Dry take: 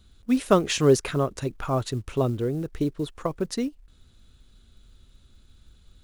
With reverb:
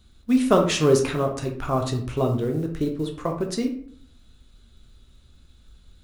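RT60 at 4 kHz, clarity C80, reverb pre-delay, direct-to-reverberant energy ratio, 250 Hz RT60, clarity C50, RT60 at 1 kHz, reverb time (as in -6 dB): 0.35 s, 12.5 dB, 9 ms, 2.0 dB, 0.70 s, 8.0 dB, 0.55 s, 0.60 s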